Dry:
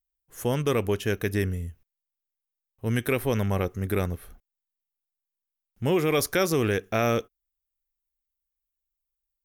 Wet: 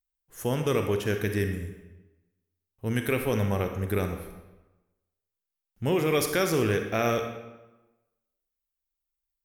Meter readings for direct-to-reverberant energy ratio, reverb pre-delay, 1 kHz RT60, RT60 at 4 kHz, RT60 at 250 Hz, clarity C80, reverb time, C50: 5.5 dB, 34 ms, 1.1 s, 0.80 s, 1.1 s, 8.5 dB, 1.1 s, 6.5 dB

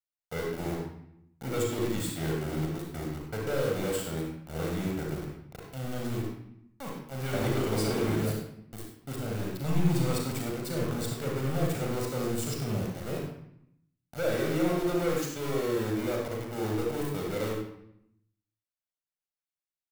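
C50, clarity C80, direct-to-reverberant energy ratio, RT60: 0.5 dB, 4.0 dB, -1.5 dB, 0.75 s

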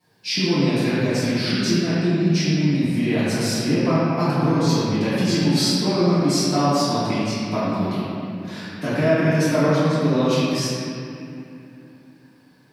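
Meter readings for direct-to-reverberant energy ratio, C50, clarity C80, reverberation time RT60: -14.5 dB, -5.5 dB, -3.5 dB, 2.7 s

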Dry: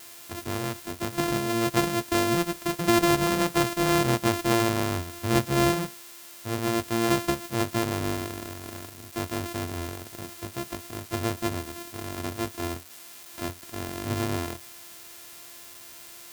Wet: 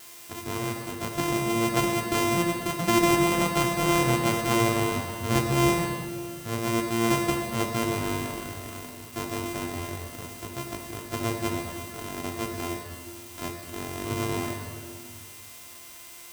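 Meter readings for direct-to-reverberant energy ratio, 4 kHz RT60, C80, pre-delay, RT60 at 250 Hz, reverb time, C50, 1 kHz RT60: 2.5 dB, 1.7 s, 5.5 dB, 5 ms, 2.5 s, 2.4 s, 4.5 dB, 2.3 s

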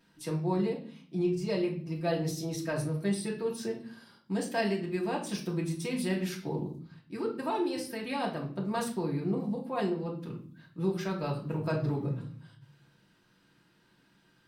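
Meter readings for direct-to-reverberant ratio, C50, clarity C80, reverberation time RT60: -3.0 dB, 8.5 dB, 13.0 dB, 0.50 s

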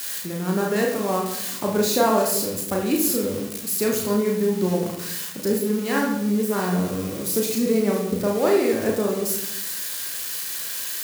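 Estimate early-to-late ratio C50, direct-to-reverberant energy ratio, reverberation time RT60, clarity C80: 4.5 dB, -1.5 dB, 0.85 s, 7.5 dB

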